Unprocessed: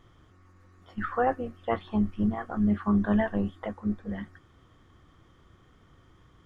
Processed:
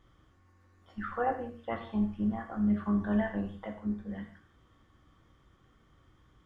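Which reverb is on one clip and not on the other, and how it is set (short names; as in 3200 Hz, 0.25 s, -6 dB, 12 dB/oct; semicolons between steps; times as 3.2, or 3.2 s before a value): non-linear reverb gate 0.2 s falling, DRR 2.5 dB; gain -7 dB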